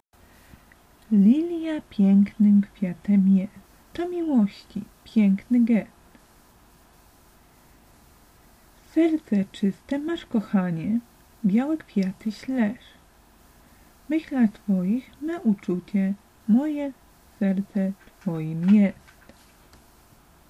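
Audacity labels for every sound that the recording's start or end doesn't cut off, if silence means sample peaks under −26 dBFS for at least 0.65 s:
1.120000	5.820000	sound
8.970000	12.710000	sound
14.100000	18.900000	sound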